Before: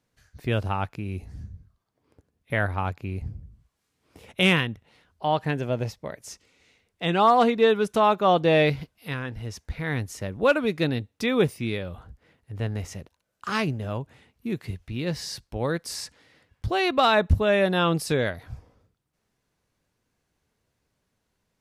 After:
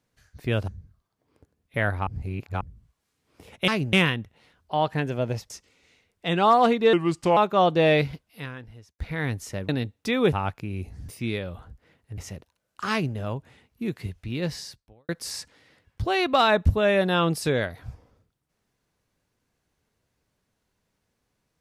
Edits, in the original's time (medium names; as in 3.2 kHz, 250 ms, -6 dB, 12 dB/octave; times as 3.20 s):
0.68–1.44 s: move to 11.48 s
2.83–3.37 s: reverse
6.01–6.27 s: delete
7.70–8.05 s: speed 80%
8.74–9.67 s: fade out
10.37–10.84 s: delete
12.57–12.82 s: delete
13.55–13.80 s: copy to 4.44 s
15.16–15.73 s: fade out quadratic